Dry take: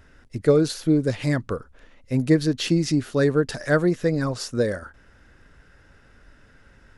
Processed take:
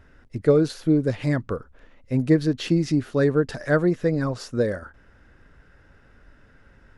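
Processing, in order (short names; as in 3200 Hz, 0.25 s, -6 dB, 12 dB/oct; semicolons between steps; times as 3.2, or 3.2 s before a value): high shelf 3600 Hz -9.5 dB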